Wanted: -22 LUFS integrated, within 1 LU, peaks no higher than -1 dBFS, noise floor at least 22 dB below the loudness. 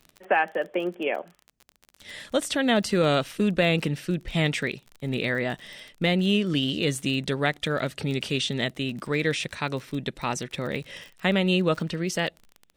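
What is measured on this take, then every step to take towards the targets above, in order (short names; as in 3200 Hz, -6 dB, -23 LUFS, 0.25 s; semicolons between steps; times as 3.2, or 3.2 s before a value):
ticks 31/s; loudness -26.5 LUFS; peak -8.0 dBFS; loudness target -22.0 LUFS
-> de-click; gain +4.5 dB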